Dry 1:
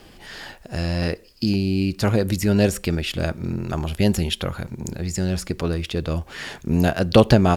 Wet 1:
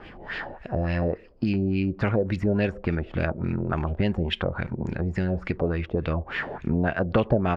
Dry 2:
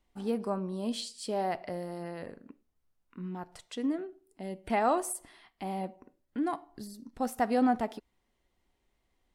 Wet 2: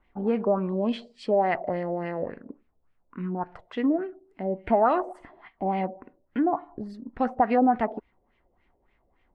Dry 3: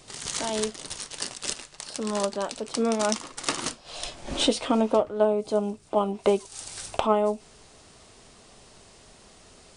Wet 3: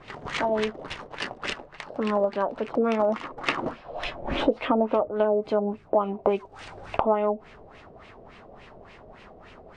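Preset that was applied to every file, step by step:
LFO low-pass sine 3.5 Hz 560–2500 Hz; compression 2.5:1, threshold -26 dBFS; normalise loudness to -27 LUFS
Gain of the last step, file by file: +2.0 dB, +7.0 dB, +4.0 dB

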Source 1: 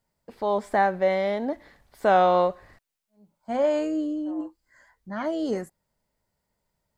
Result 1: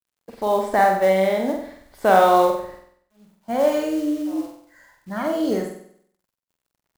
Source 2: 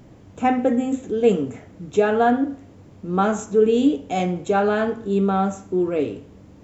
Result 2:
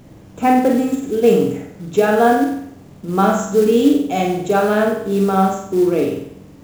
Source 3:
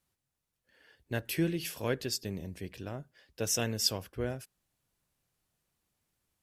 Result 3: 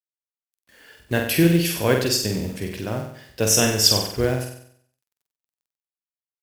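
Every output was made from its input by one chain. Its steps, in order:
companded quantiser 6-bit; flutter echo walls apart 8.1 m, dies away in 0.64 s; peak normalisation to -1.5 dBFS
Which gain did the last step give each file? +3.0 dB, +3.0 dB, +11.5 dB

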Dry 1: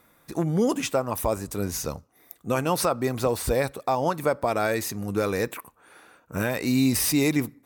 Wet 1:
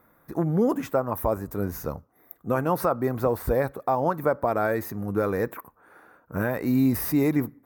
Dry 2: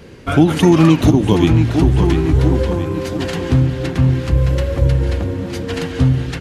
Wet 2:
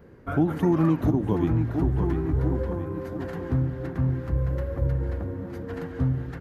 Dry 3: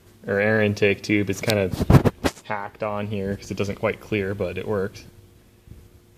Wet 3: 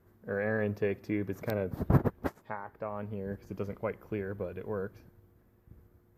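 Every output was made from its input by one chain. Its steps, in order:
high-order bell 4.9 kHz -15 dB 2.4 oct; peak normalisation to -12 dBFS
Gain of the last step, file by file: +0.5 dB, -11.0 dB, -11.0 dB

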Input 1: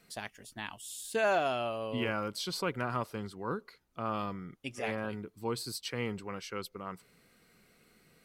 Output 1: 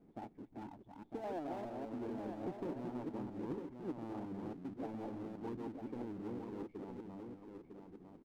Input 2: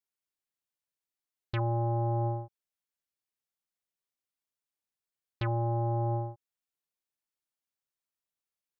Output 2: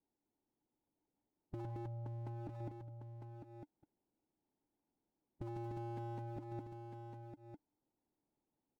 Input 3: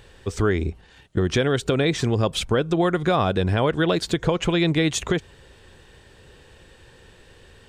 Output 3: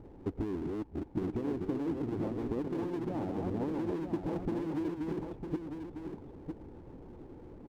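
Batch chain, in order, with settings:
chunks repeated in reverse 206 ms, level -3 dB; cascade formant filter u; compression 2:1, threshold -43 dBFS; power-law waveshaper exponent 0.7; harmonic-percussive split harmonic -8 dB; on a send: delay 953 ms -6.5 dB; on the sum: trim +5.5 dB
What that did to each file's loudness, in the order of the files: -9.0 LU, -16.0 LU, -14.0 LU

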